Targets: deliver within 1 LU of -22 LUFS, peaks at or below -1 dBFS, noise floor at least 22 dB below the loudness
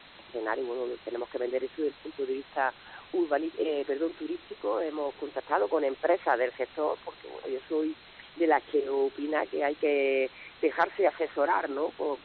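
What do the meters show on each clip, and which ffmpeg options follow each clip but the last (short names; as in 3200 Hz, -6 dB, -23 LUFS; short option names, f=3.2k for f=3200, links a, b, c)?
noise floor -52 dBFS; noise floor target -53 dBFS; loudness -30.5 LUFS; peak -12.0 dBFS; loudness target -22.0 LUFS
-> -af "afftdn=nr=6:nf=-52"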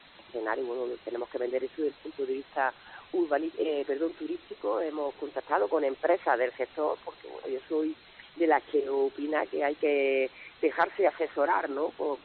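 noise floor -55 dBFS; loudness -30.5 LUFS; peak -12.0 dBFS; loudness target -22.0 LUFS
-> -af "volume=8.5dB"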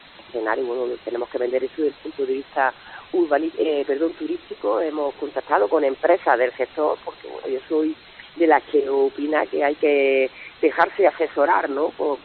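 loudness -22.0 LUFS; peak -3.5 dBFS; noise floor -46 dBFS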